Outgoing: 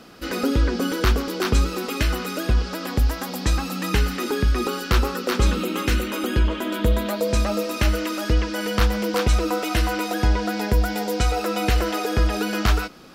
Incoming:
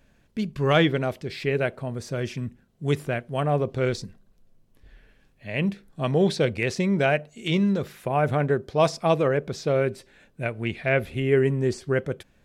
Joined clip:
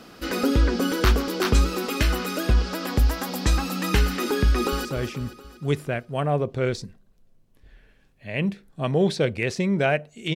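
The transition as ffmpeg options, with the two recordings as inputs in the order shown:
ffmpeg -i cue0.wav -i cue1.wav -filter_complex "[0:a]apad=whole_dur=10.35,atrim=end=10.35,atrim=end=4.852[link_01];[1:a]atrim=start=2.048:end=7.55[link_02];[link_01][link_02]acrossfade=duration=0.004:curve1=hsin:curve2=hsin,asplit=2[link_03][link_04];[link_04]afade=type=in:start_time=4.48:duration=0.01,afade=type=out:start_time=4.85:duration=0.01,aecho=0:1:240|480|720|960|1200|1440:0.298538|0.164196|0.0903078|0.0496693|0.0273181|0.015025[link_05];[link_03][link_05]amix=inputs=2:normalize=0" out.wav

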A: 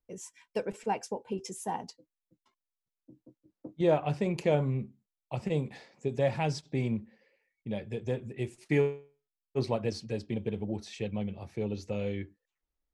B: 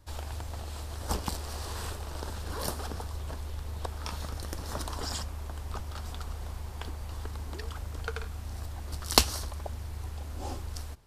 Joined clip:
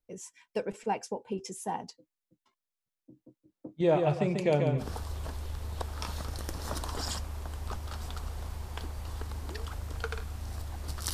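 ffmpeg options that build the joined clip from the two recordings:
ffmpeg -i cue0.wav -i cue1.wav -filter_complex "[0:a]asplit=3[link_01][link_02][link_03];[link_01]afade=type=out:start_time=3.93:duration=0.02[link_04];[link_02]aecho=1:1:141|282|423|564:0.562|0.152|0.041|0.0111,afade=type=in:start_time=3.93:duration=0.02,afade=type=out:start_time=4.89:duration=0.02[link_05];[link_03]afade=type=in:start_time=4.89:duration=0.02[link_06];[link_04][link_05][link_06]amix=inputs=3:normalize=0,apad=whole_dur=11.13,atrim=end=11.13,atrim=end=4.89,asetpts=PTS-STARTPTS[link_07];[1:a]atrim=start=2.81:end=9.17,asetpts=PTS-STARTPTS[link_08];[link_07][link_08]acrossfade=duration=0.12:curve1=tri:curve2=tri" out.wav

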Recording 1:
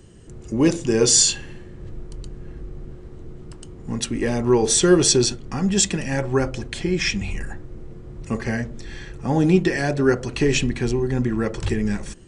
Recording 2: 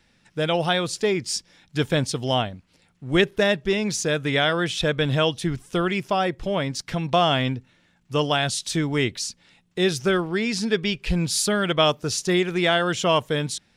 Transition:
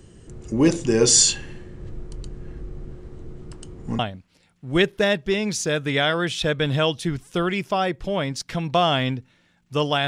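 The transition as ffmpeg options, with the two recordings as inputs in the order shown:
ffmpeg -i cue0.wav -i cue1.wav -filter_complex "[0:a]apad=whole_dur=10.07,atrim=end=10.07,atrim=end=3.992[link_01];[1:a]atrim=start=2.378:end=8.46[link_02];[link_01][link_02]acrossfade=duration=0.004:curve1=hsin:curve2=hsin" out.wav

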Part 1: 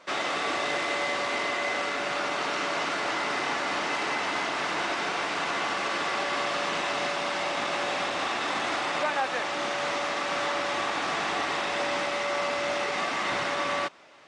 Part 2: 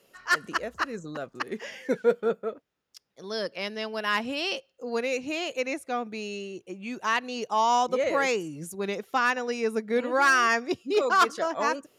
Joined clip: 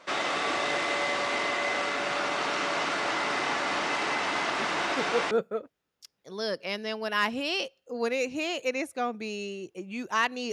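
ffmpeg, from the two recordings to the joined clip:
ffmpeg -i cue0.wav -i cue1.wav -filter_complex "[1:a]asplit=2[link_01][link_02];[0:a]apad=whole_dur=10.52,atrim=end=10.52,atrim=end=5.312[link_03];[link_02]atrim=start=2.228:end=7.44[link_04];[link_01]atrim=start=1.34:end=2.23,asetpts=PTS-STARTPTS,volume=-6.5dB,afade=type=in:duration=0.004:curve=hsin,afade=type=out:start_time=0.886:duration=0.004:curve=hsin,adelay=4420[link_05];[link_03][link_04]acrossfade=duration=0.004:curve1=hsin:curve2=hsin[link_06];[link_06][link_05]amix=inputs=2:normalize=0" out.wav

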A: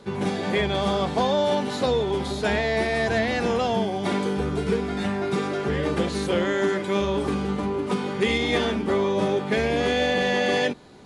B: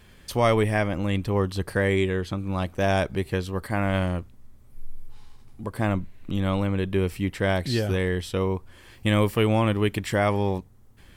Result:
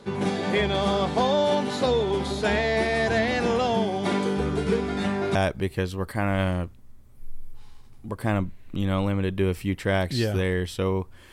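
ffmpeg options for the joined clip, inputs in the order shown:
ffmpeg -i cue0.wav -i cue1.wav -filter_complex "[1:a]asplit=2[link_01][link_02];[0:a]apad=whole_dur=11.32,atrim=end=11.32,atrim=end=5.352[link_03];[link_02]atrim=start=2.898:end=8.87[link_04];[link_01]atrim=start=2:end=2.9,asetpts=PTS-STARTPTS,volume=-18dB,afade=type=in:duration=0.004:curve=hsin,afade=type=out:start_time=0.896:duration=0.004:curve=hsin,adelay=196245S[link_05];[link_03][link_04]acrossfade=duration=0.004:curve1=hsin:curve2=hsin[link_06];[link_06][link_05]amix=inputs=2:normalize=0" out.wav

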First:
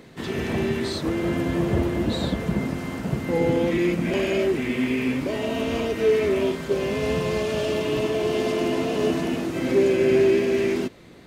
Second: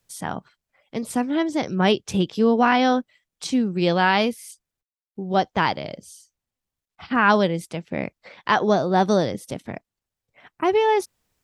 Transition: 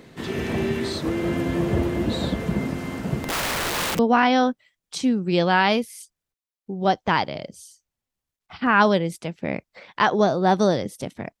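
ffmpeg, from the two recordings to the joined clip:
ffmpeg -i cue0.wav -i cue1.wav -filter_complex "[0:a]asettb=1/sr,asplit=3[link_01][link_02][link_03];[link_01]atrim=end=3.224[link_04];[link_02]atrim=start=3.22:end=3.99,asetpts=PTS-STARTPTS,afade=type=in:duration=0.004:curve=qsin,afade=type=out:start_time=0.766:duration=0.004:curve=qsin,aeval=exprs='(mod(11.2*val(0)+1,2)-1)/11.2':channel_layout=same[link_05];[link_03]atrim=start=3.986[link_06];[link_04][link_05]acrossfade=duration=0.004:curve1=hsin:curve2=qsin[link_07];[link_07][link_06]acrossfade=duration=0.004:curve1=qsin:curve2=hsin,apad=whole_dur=11.4,atrim=end=11.4,atrim=end=3.992[link_08];[1:a]atrim=start=2.478:end=9.89[link_09];[link_08][link_09]acrossfade=duration=0.004:curve1=hsin:curve2=hsin" out.wav

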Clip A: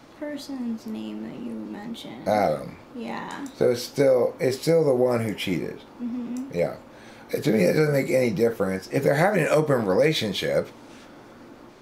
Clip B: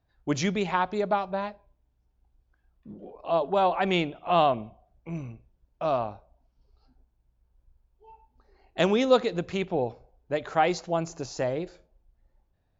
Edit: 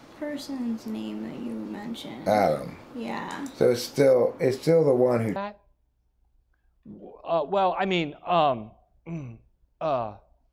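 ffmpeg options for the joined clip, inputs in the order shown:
ffmpeg -i cue0.wav -i cue1.wav -filter_complex "[0:a]asettb=1/sr,asplit=3[link_01][link_02][link_03];[link_01]atrim=end=4.134[link_04];[link_02]atrim=start=4.13:end=5.36,asetpts=PTS-STARTPTS,afade=type=in:duration=0.004:curve=qsin,afade=type=out:start_time=1.226:duration=0.004:curve=qsin,highshelf=frequency=3000:gain=-8[link_05];[link_03]atrim=start=5.356[link_06];[link_04][link_05]acrossfade=duration=0.004:curve1=hsin:curve2=qsin[link_07];[link_07][link_06]acrossfade=duration=0.004:curve1=qsin:curve2=hsin,apad=whole_dur=10.52,atrim=end=10.52,atrim=end=5.362[link_08];[1:a]atrim=start=1.358:end=6.52[link_09];[link_08][link_09]acrossfade=duration=0.004:curve1=hsin:curve2=hsin" out.wav

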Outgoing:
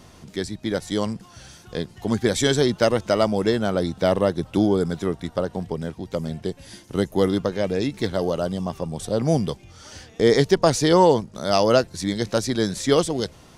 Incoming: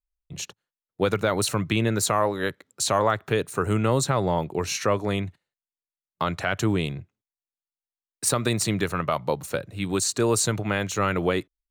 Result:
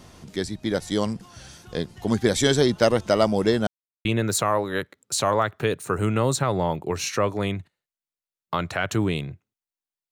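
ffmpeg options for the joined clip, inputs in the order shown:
ffmpeg -i cue0.wav -i cue1.wav -filter_complex "[0:a]apad=whole_dur=10.11,atrim=end=10.11,asplit=2[link_01][link_02];[link_01]atrim=end=3.67,asetpts=PTS-STARTPTS,afade=type=out:start_time=3.666:duration=0.004:curve=hsin[link_03];[link_02]atrim=start=3.67:end=4.05,asetpts=PTS-STARTPTS,volume=0[link_04];[1:a]atrim=start=1.73:end=7.79,asetpts=PTS-STARTPTS,afade=type=in:duration=0.004:curve=hsin[link_05];[link_03][link_04][link_05]concat=n=3:v=0:a=1" out.wav

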